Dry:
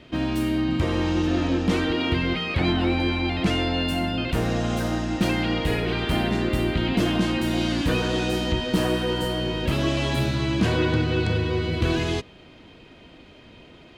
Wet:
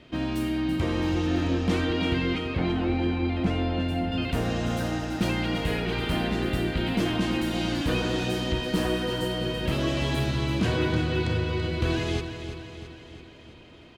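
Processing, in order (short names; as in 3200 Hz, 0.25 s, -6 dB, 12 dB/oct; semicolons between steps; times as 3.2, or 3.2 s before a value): 2.38–4.12 high shelf 2200 Hz -11.5 dB; on a send: feedback echo 0.333 s, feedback 56%, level -9.5 dB; on the sum: gain -3.5 dB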